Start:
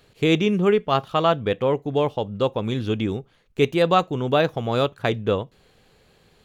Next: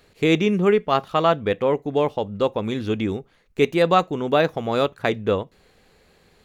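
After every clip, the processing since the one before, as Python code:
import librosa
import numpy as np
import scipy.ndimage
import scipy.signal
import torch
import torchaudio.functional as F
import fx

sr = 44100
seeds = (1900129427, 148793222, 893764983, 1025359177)

y = fx.graphic_eq_31(x, sr, hz=(125, 2000, 3150), db=(-9, 3, -4))
y = y * librosa.db_to_amplitude(1.0)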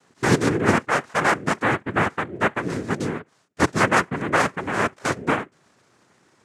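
y = fx.high_shelf_res(x, sr, hz=2500.0, db=-6.0, q=1.5)
y = fx.noise_vocoder(y, sr, seeds[0], bands=3)
y = y * librosa.db_to_amplitude(-1.5)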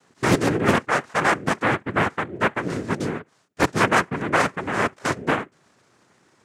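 y = fx.doppler_dist(x, sr, depth_ms=0.7)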